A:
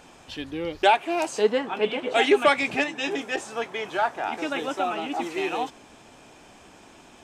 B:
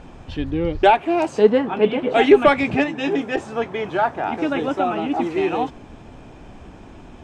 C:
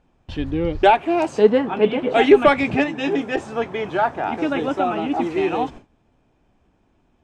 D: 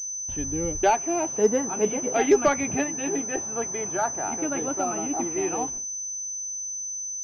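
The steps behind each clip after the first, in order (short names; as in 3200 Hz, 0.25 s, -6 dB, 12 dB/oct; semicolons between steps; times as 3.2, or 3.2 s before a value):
RIAA curve playback; gain +4 dB
gate with hold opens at -27 dBFS
pulse-width modulation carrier 6100 Hz; gain -7 dB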